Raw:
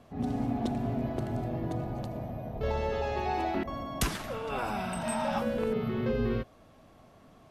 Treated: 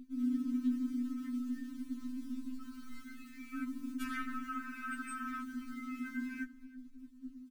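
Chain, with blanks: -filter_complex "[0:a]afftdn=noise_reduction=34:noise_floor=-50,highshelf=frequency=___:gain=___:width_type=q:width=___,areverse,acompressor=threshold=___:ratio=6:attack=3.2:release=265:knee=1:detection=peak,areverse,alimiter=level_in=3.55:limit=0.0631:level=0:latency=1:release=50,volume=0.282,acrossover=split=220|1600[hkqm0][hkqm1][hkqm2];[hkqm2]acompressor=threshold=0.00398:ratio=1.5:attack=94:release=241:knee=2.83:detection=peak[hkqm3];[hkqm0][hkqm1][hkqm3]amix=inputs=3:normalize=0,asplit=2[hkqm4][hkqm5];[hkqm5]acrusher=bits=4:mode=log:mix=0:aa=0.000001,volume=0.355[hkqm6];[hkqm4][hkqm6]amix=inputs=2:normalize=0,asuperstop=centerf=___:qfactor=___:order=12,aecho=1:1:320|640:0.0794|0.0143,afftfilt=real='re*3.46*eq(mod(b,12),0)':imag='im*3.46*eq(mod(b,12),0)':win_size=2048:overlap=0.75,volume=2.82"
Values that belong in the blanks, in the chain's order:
2600, -13.5, 1.5, 0.0112, 650, 0.73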